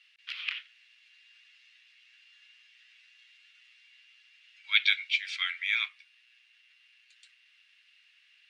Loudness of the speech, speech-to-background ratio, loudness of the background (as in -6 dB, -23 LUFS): -27.5 LUFS, 9.0 dB, -36.5 LUFS